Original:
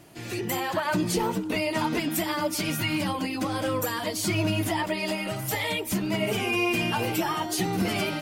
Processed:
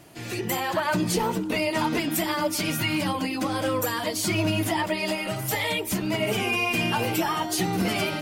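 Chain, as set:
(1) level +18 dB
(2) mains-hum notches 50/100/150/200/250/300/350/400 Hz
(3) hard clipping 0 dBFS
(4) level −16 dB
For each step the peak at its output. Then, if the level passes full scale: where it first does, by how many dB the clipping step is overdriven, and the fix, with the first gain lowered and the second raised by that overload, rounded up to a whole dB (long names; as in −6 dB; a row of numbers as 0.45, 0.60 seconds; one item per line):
+4.0, +3.5, 0.0, −16.0 dBFS
step 1, 3.5 dB
step 1 +14 dB, step 4 −12 dB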